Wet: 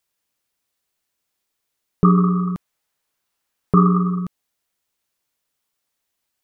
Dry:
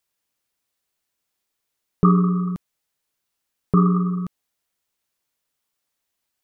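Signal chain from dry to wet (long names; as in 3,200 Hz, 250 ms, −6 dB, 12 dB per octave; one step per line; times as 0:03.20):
0:02.17–0:04.20: parametric band 1,100 Hz +4 dB 2.4 octaves
level +1.5 dB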